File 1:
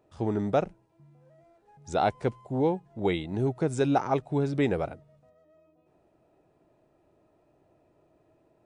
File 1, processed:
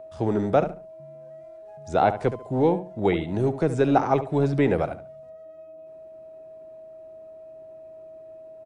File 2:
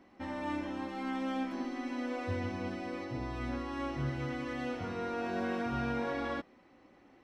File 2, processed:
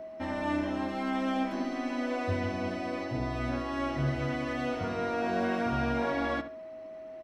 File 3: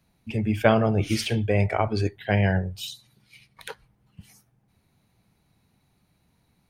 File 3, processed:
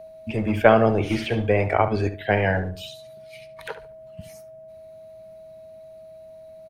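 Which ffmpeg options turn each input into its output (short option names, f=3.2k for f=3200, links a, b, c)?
-filter_complex "[0:a]acrossover=split=2700[a][b];[b]acompressor=threshold=-49dB:ratio=4:attack=1:release=60[c];[a][c]amix=inputs=2:normalize=0,aeval=exprs='val(0)+0.00631*sin(2*PI*640*n/s)':c=same,acrossover=split=270|5800[d][e][f];[d]volume=30.5dB,asoftclip=hard,volume=-30.5dB[g];[g][e][f]amix=inputs=3:normalize=0,asplit=2[h][i];[i]adelay=71,lowpass=f=2.5k:p=1,volume=-11dB,asplit=2[j][k];[k]adelay=71,lowpass=f=2.5k:p=1,volume=0.26,asplit=2[l][m];[m]adelay=71,lowpass=f=2.5k:p=1,volume=0.26[n];[h][j][l][n]amix=inputs=4:normalize=0,volume=5dB"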